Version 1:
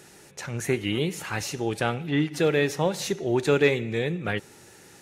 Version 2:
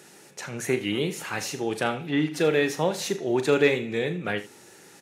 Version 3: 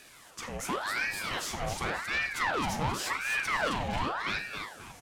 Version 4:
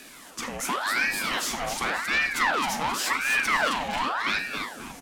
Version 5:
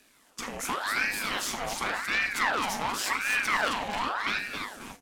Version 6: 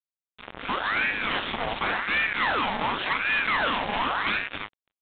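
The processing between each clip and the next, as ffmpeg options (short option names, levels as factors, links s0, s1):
-filter_complex "[0:a]highpass=160,asplit=2[s0][s1];[s1]aecho=0:1:39|80:0.266|0.158[s2];[s0][s2]amix=inputs=2:normalize=0"
-filter_complex "[0:a]asoftclip=type=tanh:threshold=0.0596,asplit=5[s0][s1][s2][s3][s4];[s1]adelay=266,afreqshift=76,volume=0.531[s5];[s2]adelay=532,afreqshift=152,volume=0.191[s6];[s3]adelay=798,afreqshift=228,volume=0.0692[s7];[s4]adelay=1064,afreqshift=304,volume=0.0248[s8];[s0][s5][s6][s7][s8]amix=inputs=5:normalize=0,aeval=exprs='val(0)*sin(2*PI*1200*n/s+1200*0.75/0.9*sin(2*PI*0.9*n/s))':c=same"
-filter_complex "[0:a]equalizer=f=100:t=o:w=0.67:g=-11,equalizer=f=250:t=o:w=0.67:g=10,equalizer=f=16000:t=o:w=0.67:g=4,acrossover=split=650|1000[s0][s1][s2];[s0]acompressor=threshold=0.00708:ratio=6[s3];[s3][s1][s2]amix=inputs=3:normalize=0,volume=2.11"
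-af "agate=range=0.251:threshold=0.01:ratio=16:detection=peak,tremolo=f=210:d=0.667"
-af "dynaudnorm=f=120:g=9:m=2.37,acrusher=bits=3:mix=0:aa=0.5,aresample=8000,asoftclip=type=tanh:threshold=0.106,aresample=44100"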